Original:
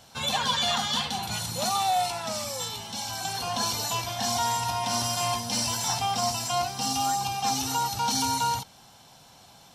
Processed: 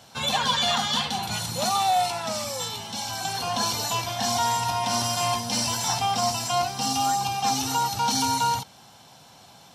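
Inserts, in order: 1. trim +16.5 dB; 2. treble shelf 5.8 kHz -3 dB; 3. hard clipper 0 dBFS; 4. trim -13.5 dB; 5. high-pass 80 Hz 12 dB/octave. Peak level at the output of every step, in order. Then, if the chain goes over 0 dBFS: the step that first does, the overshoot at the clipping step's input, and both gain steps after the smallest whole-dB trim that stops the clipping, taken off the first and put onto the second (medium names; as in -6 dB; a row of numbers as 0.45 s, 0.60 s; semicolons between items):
+4.5 dBFS, +3.5 dBFS, 0.0 dBFS, -13.5 dBFS, -13.0 dBFS; step 1, 3.5 dB; step 1 +12.5 dB, step 4 -9.5 dB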